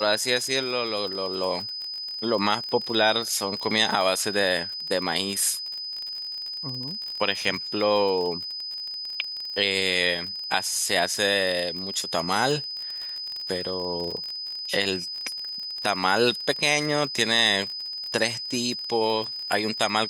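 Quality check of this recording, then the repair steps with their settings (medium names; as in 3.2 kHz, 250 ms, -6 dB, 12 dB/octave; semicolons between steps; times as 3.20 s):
crackle 38 per s -30 dBFS
whine 5 kHz -31 dBFS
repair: de-click; band-stop 5 kHz, Q 30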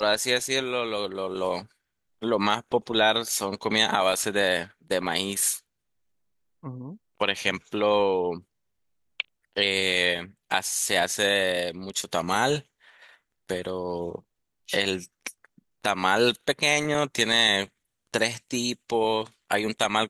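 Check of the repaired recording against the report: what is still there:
nothing left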